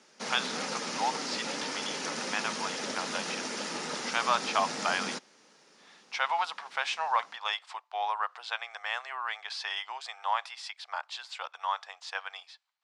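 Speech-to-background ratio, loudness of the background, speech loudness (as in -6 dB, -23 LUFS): 0.5 dB, -34.5 LUFS, -34.0 LUFS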